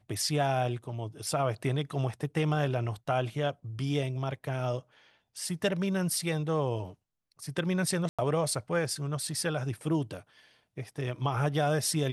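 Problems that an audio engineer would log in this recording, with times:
8.09–8.19 gap 96 ms

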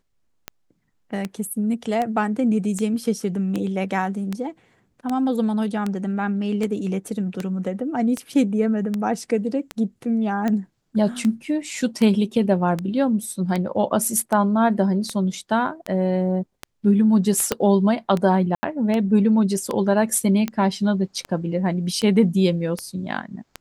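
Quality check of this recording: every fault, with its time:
tick 78 rpm -12 dBFS
17.52 pop -5 dBFS
18.55–18.63 gap 80 ms

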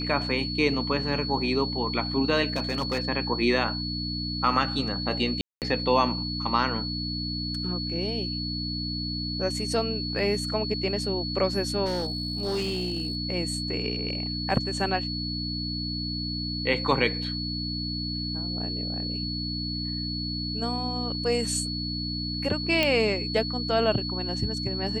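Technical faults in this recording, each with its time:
hum 60 Hz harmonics 5 -33 dBFS
tone 4400 Hz -32 dBFS
2.5–3 clipped -22 dBFS
5.41–5.62 gap 0.208 s
11.85–13.17 clipped -24 dBFS
22.83 pop -10 dBFS

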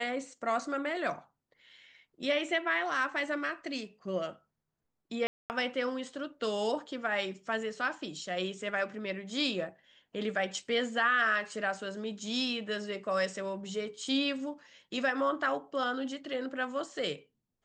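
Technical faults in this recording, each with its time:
5.27–5.5 gap 0.229 s

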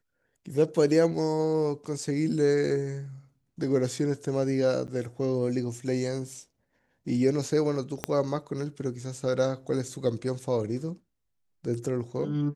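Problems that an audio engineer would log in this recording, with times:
4.87–4.88 gap 9.6 ms
8.04 pop -12 dBFS

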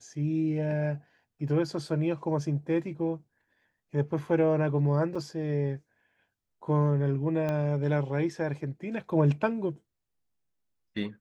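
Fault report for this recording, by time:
5.15–5.16 gap 5.1 ms
7.49 pop -19 dBFS

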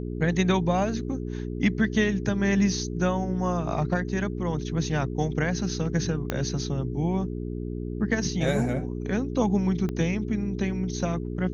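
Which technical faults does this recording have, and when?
hum 60 Hz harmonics 7 -32 dBFS
6.3 pop -12 dBFS
9.89 pop -19 dBFS

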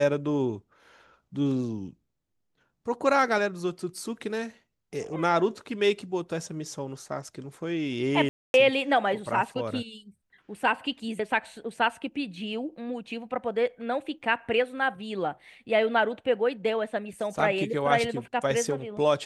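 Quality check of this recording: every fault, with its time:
8.29–8.54 gap 0.251 s

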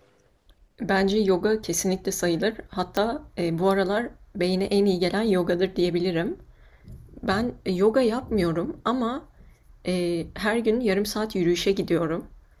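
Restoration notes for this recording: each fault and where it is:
2.97 pop -11 dBFS

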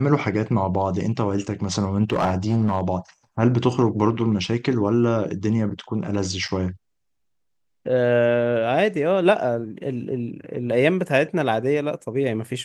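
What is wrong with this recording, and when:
2.1–2.81 clipped -15 dBFS
6.48–6.49 gap 6.2 ms

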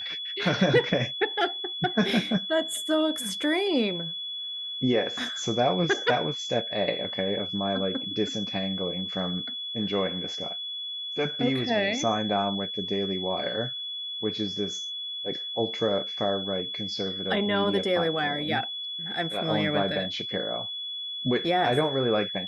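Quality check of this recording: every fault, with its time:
tone 3400 Hz -32 dBFS

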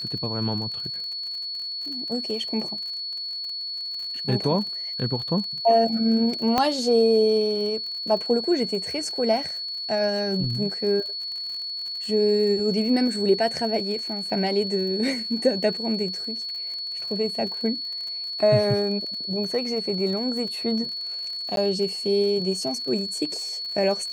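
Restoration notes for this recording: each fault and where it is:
crackle 50/s -33 dBFS
tone 4400 Hz -29 dBFS
6.58 pop -7 dBFS
21.56–21.57 gap

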